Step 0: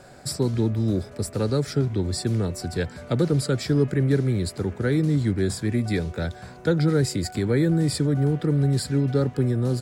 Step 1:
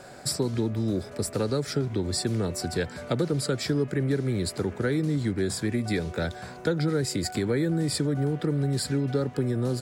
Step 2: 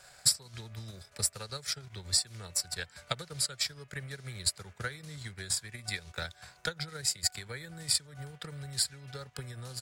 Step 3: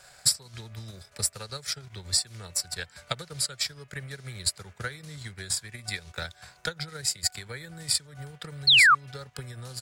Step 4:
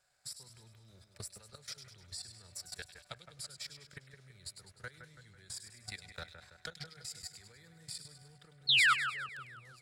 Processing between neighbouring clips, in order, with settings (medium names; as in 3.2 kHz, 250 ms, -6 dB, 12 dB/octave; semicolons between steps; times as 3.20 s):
bass shelf 140 Hz -8.5 dB; compression 2.5:1, threshold -27 dBFS, peak gain reduction 7.5 dB; trim +3 dB
amplifier tone stack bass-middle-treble 10-0-10; transient shaper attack +9 dB, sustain -9 dB; trim -1.5 dB
painted sound fall, 8.67–8.95 s, 1.1–4.5 kHz -19 dBFS; trim +2.5 dB
level held to a coarse grid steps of 17 dB; two-band feedback delay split 2.3 kHz, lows 165 ms, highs 101 ms, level -9 dB; loudspeaker Doppler distortion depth 0.2 ms; trim -8.5 dB